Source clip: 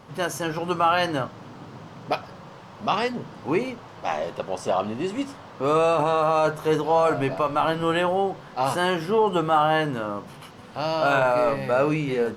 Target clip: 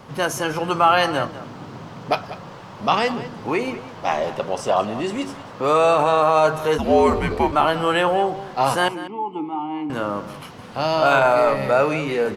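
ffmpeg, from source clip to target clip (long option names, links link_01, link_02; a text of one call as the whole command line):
ffmpeg -i in.wav -filter_complex "[0:a]asettb=1/sr,asplit=3[link_01][link_02][link_03];[link_01]atrim=end=8.884[link_04];[link_02]atrim=start=8.88:end=9.9,asetpts=PTS-STARTPTS,afade=type=in:duration=0.004:curve=qsin,afade=type=out:start_time=1.016:duration=0.004:curve=qsin,asplit=3[link_05][link_06][link_07];[link_05]bandpass=frequency=300:width_type=q:width=8,volume=0dB[link_08];[link_06]bandpass=frequency=870:width_type=q:width=8,volume=-6dB[link_09];[link_07]bandpass=frequency=2240:width_type=q:width=8,volume=-9dB[link_10];[link_08][link_09][link_10]amix=inputs=3:normalize=0[link_11];[link_03]atrim=start=9.896[link_12];[link_04][link_11]acrossfade=duration=0.004:curve1=hsin:curve2=qsin[link_13];[link_13][link_12]acrossfade=duration=0.004:curve1=qsin:curve2=hsin,acrossover=split=450|1800[link_14][link_15][link_16];[link_14]alimiter=level_in=3.5dB:limit=-24dB:level=0:latency=1,volume=-3.5dB[link_17];[link_17][link_15][link_16]amix=inputs=3:normalize=0,asplit=3[link_18][link_19][link_20];[link_18]afade=type=out:start_time=6.77:duration=0.02[link_21];[link_19]afreqshift=-230,afade=type=in:start_time=6.77:duration=0.02,afade=type=out:start_time=7.51:duration=0.02[link_22];[link_20]afade=type=in:start_time=7.51:duration=0.02[link_23];[link_21][link_22][link_23]amix=inputs=3:normalize=0,asplit=2[link_24][link_25];[link_25]adelay=192.4,volume=-14dB,highshelf=frequency=4000:gain=-4.33[link_26];[link_24][link_26]amix=inputs=2:normalize=0,volume=5dB" out.wav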